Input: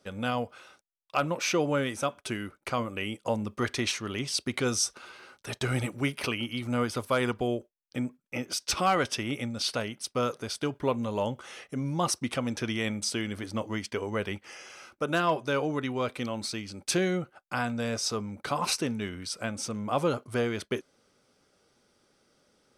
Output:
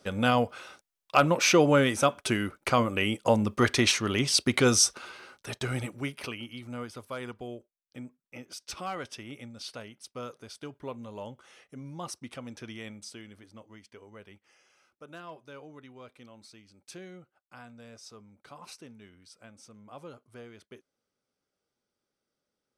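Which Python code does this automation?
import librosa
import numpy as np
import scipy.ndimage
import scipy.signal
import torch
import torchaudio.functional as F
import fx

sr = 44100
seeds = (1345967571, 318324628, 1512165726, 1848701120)

y = fx.gain(x, sr, db=fx.line((4.79, 6.0), (5.66, -2.5), (6.95, -11.0), (12.79, -11.0), (13.65, -18.5)))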